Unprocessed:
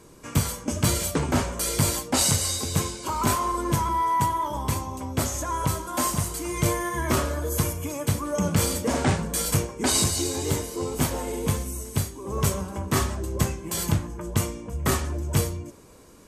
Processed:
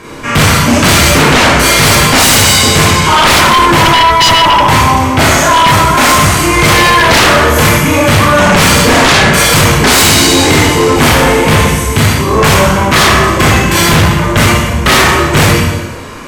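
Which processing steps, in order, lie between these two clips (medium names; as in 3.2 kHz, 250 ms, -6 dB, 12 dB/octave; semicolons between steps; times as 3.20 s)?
FFT filter 480 Hz 0 dB, 2.1 kHz +10 dB, 8.5 kHz -7 dB; Schroeder reverb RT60 1 s, combs from 26 ms, DRR -6 dB; sine folder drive 15 dB, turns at -0.5 dBFS; trim -2.5 dB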